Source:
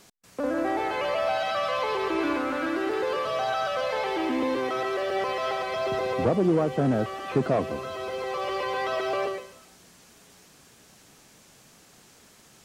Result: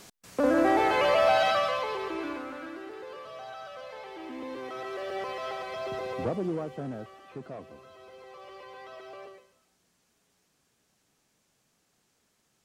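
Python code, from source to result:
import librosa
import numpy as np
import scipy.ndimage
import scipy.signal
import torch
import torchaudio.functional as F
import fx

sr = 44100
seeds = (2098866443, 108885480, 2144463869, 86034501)

y = fx.gain(x, sr, db=fx.line((1.47, 4.0), (1.85, -4.5), (2.94, -15.0), (4.13, -15.0), (5.08, -7.0), (6.28, -7.0), (7.32, -17.5)))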